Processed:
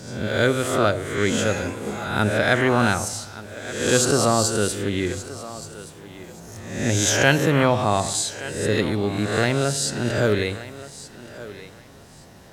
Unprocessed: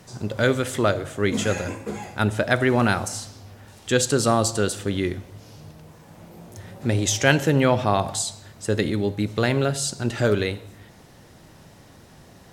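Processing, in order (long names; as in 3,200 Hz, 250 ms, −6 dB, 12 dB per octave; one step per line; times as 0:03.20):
peak hold with a rise ahead of every peak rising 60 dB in 0.81 s
feedback echo with a high-pass in the loop 1,175 ms, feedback 22%, high-pass 220 Hz, level −15.5 dB
level −1 dB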